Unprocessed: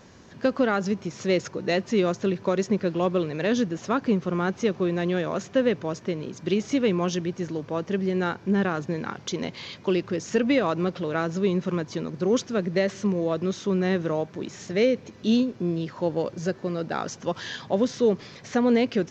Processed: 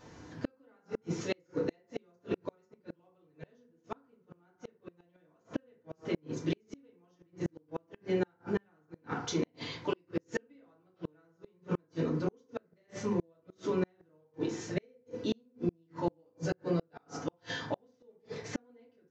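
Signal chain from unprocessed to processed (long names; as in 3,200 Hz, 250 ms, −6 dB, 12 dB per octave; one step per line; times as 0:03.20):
feedback delay network reverb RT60 0.66 s, low-frequency decay 0.9×, high-frequency decay 0.4×, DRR −6.5 dB
gate with flip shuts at −11 dBFS, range −40 dB
level −9 dB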